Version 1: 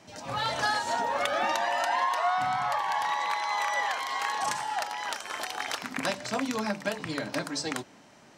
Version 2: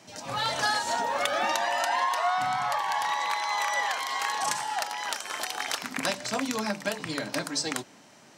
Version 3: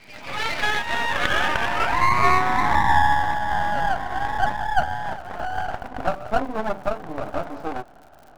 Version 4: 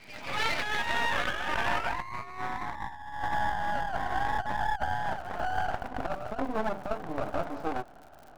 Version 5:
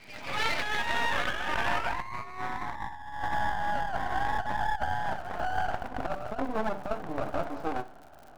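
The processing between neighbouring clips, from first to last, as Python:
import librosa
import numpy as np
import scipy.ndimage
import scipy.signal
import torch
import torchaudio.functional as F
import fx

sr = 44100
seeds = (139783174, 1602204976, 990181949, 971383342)

y1 = scipy.signal.sosfilt(scipy.signal.butter(2, 89.0, 'highpass', fs=sr, output='sos'), x)
y1 = fx.high_shelf(y1, sr, hz=4000.0, db=6.5)
y2 = fx.filter_sweep_lowpass(y1, sr, from_hz=2300.0, to_hz=740.0, start_s=0.53, end_s=3.35, q=6.0)
y2 = np.maximum(y2, 0.0)
y2 = fx.dmg_crackle(y2, sr, seeds[0], per_s=110.0, level_db=-44.0)
y2 = y2 * librosa.db_to_amplitude(3.5)
y3 = fx.over_compress(y2, sr, threshold_db=-23.0, ratio=-0.5)
y3 = y3 * librosa.db_to_amplitude(-6.0)
y4 = fx.echo_feedback(y3, sr, ms=64, feedback_pct=41, wet_db=-17.0)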